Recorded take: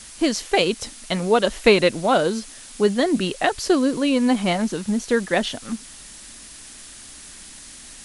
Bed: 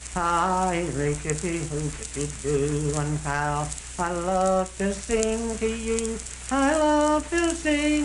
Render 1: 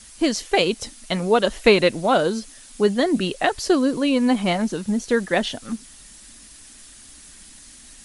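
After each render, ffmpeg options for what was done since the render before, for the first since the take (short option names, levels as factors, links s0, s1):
-af "afftdn=nr=6:nf=-42"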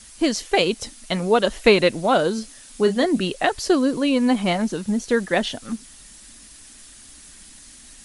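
-filter_complex "[0:a]asettb=1/sr,asplit=3[s0][s1][s2];[s0]atrim=end=2.354[s3];[s1]atrim=start=2.35:end=3.05,asetpts=PTS-STARTPTS,afade=t=in:d=0.004:c=qsin,afade=t=out:st=0.696:d=0.004:c=qsin,asplit=2[s4][s5];[s5]adelay=32,volume=0.355[s6];[s4][s6]amix=inputs=2:normalize=0,atrim=end_sample=30870[s7];[s2]atrim=start=3.046[s8];[s3][s7]acrossfade=d=0.004:c1=hsin:c2=qsin[s9];[s9][s8]acrossfade=d=0.004:c1=qsin:c2=hsin"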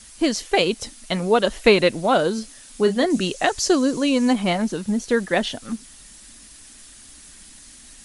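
-filter_complex "[0:a]asettb=1/sr,asplit=3[s0][s1][s2];[s0]atrim=end=3.104[s3];[s1]atrim=start=3.1:end=4.33,asetpts=PTS-STARTPTS,afade=t=in:d=0.004:c=qsin,afade=t=out:st=1.226:d=0.004:c=qsin,equalizer=f=6500:t=o:w=0.72:g=9.5[s4];[s2]atrim=start=4.326[s5];[s3][s4]acrossfade=d=0.004:c1=hsin:c2=qsin[s6];[s6][s5]acrossfade=d=0.004:c1=qsin:c2=hsin"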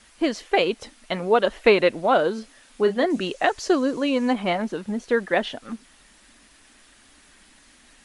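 -af "bass=f=250:g=-9,treble=f=4000:g=-14"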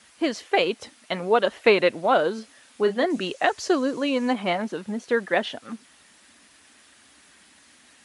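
-af "highpass=f=71:w=0.5412,highpass=f=71:w=1.3066,lowshelf=f=450:g=-3"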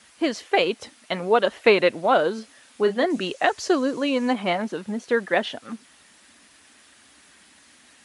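-af "volume=1.12"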